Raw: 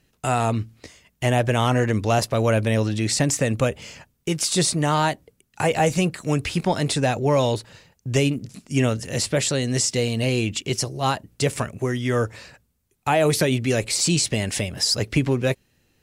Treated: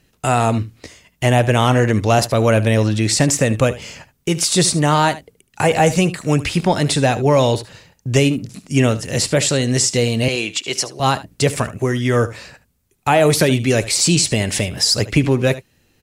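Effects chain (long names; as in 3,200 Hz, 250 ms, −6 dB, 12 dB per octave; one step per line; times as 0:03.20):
0:10.28–0:11.00: meter weighting curve A
on a send: single-tap delay 74 ms −16 dB
on the sum: level +5.5 dB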